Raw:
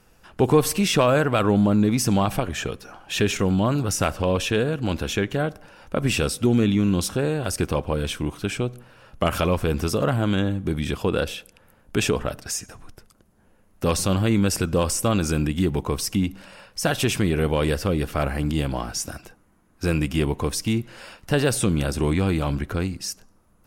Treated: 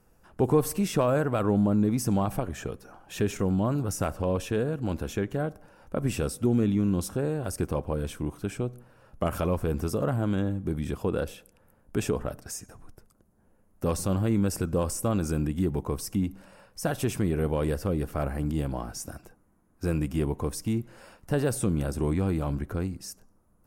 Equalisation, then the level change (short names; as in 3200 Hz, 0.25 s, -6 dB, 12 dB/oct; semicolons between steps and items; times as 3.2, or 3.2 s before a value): bell 3300 Hz -11 dB 2 oct; -4.5 dB